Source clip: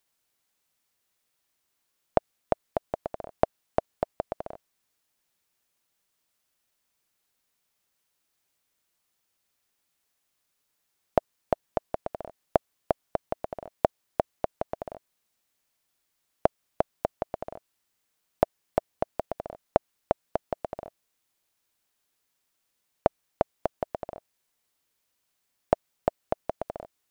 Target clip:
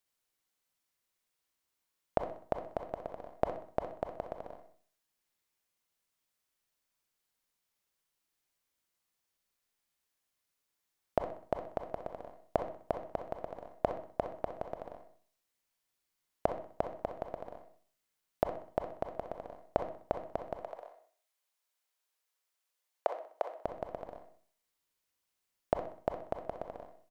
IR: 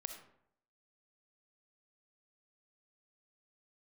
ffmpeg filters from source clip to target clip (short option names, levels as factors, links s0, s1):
-filter_complex "[0:a]asettb=1/sr,asplit=3[s0][s1][s2];[s0]atrim=end=20.604[s3];[s1]atrim=start=20.6:end=23.53,asetpts=PTS-STARTPTS,afade=t=in:d=0.004:c=qsin,afade=t=out:st=2.926:d=0.004:c=qsin,highpass=f=460:w=0.5412,highpass=f=460:w=1.3066[s4];[s2]atrim=start=23.526[s5];[s3][s4]acrossfade=d=0.004:c1=hsin:c2=qsin[s6];[s6][s5]acrossfade=d=0.004:c1=qsin:c2=hsin,aecho=1:1:63|126|189|252:0.251|0.105|0.0443|0.0186[s7];[1:a]atrim=start_sample=2205,asetrate=70560,aresample=44100[s8];[s7][s8]afir=irnorm=-1:irlink=0"